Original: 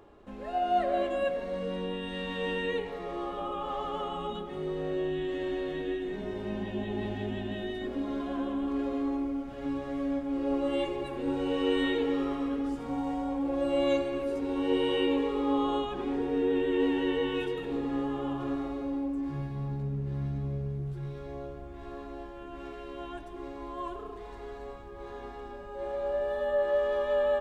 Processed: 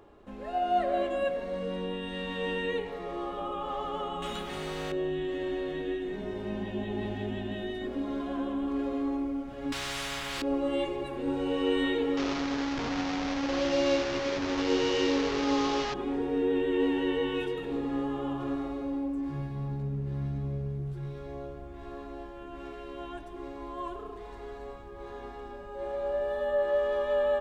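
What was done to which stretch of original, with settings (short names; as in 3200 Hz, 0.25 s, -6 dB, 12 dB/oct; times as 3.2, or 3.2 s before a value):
4.22–4.92 spectral compressor 2:1
9.72–10.42 spectral compressor 10:1
12.17–15.94 delta modulation 32 kbps, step -26 dBFS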